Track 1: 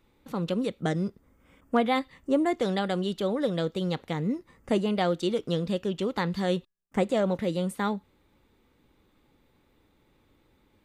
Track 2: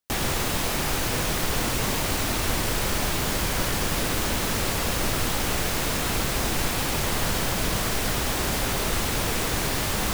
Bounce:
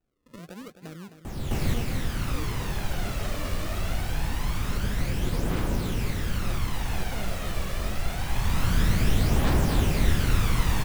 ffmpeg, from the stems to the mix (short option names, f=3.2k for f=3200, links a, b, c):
-filter_complex "[0:a]acrossover=split=490|3000[a][b][c];[b]acompressor=threshold=-36dB:ratio=6[d];[a][d][c]amix=inputs=3:normalize=0,acrusher=samples=39:mix=1:aa=0.000001:lfo=1:lforange=39:lforate=0.92,volume=-13dB,asplit=3[e][f][g];[f]volume=-10.5dB[h];[1:a]bass=f=250:g=6,treble=f=4k:g=-6,aphaser=in_gain=1:out_gain=1:delay=1.8:decay=0.56:speed=0.24:type=triangular,adelay=1150,volume=-6dB,asplit=2[i][j];[j]volume=-4.5dB[k];[g]apad=whole_len=497562[l];[i][l]sidechaincompress=threshold=-54dB:ratio=8:attack=8.6:release=653[m];[h][k]amix=inputs=2:normalize=0,aecho=0:1:261|522|783|1044|1305:1|0.37|0.137|0.0507|0.0187[n];[e][m][n]amix=inputs=3:normalize=0"